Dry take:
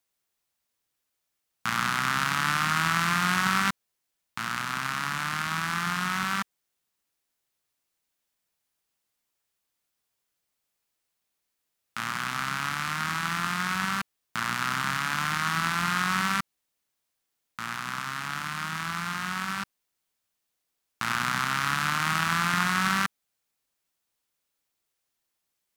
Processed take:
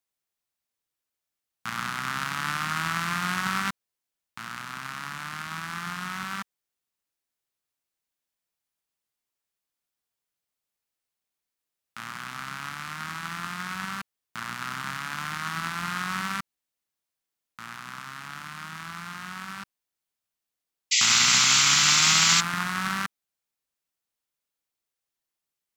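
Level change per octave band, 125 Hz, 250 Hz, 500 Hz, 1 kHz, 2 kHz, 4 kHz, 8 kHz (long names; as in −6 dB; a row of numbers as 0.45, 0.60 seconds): −3.5, −3.5, −3.5, −3.5, −1.5, +7.0, +11.0 decibels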